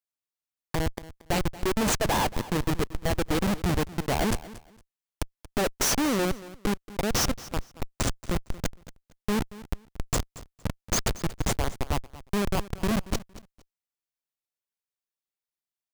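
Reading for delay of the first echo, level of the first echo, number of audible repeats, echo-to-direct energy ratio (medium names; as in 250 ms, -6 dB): 230 ms, -17.5 dB, 2, -17.5 dB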